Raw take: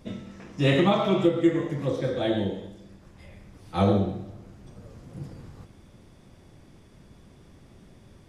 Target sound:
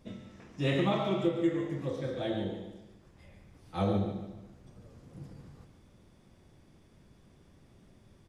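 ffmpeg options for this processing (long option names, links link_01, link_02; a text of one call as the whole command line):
ffmpeg -i in.wav -af "aecho=1:1:145|290|435|580:0.316|0.12|0.0457|0.0174,volume=-8dB" out.wav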